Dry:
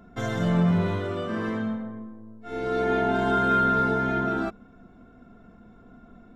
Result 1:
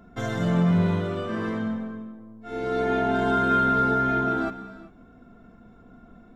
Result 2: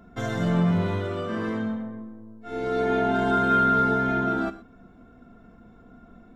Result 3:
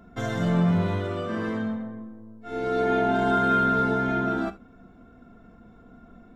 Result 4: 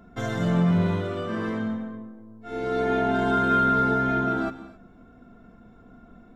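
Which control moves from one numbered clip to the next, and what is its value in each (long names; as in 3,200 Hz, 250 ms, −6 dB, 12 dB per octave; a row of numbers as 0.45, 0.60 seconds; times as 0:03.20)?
reverb whose tail is shaped and stops, gate: 420, 140, 90, 290 milliseconds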